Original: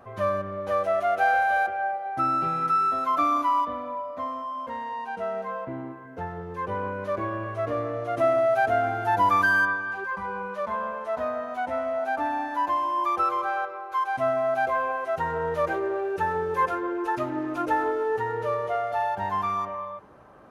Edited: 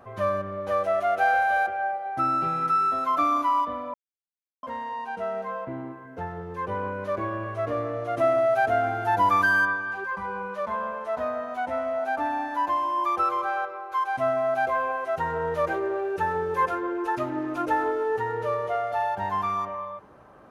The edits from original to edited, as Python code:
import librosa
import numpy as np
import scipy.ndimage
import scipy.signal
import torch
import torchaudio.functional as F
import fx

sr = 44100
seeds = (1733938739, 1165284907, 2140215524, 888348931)

y = fx.edit(x, sr, fx.silence(start_s=3.94, length_s=0.69), tone=tone)